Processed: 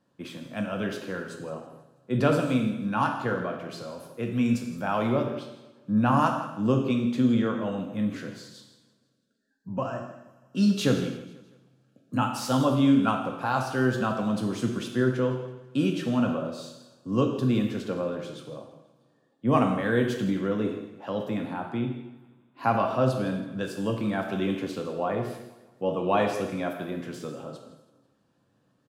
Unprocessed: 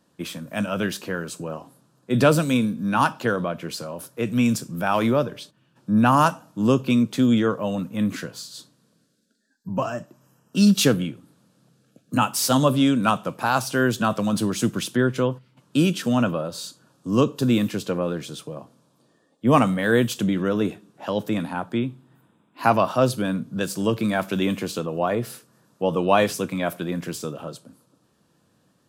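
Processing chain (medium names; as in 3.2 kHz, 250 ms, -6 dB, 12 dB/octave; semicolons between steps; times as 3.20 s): low-pass 2.9 kHz 6 dB/octave; on a send: feedback delay 163 ms, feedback 46%, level -17.5 dB; on the sum: gated-style reverb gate 310 ms falling, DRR 2.5 dB; trim -6.5 dB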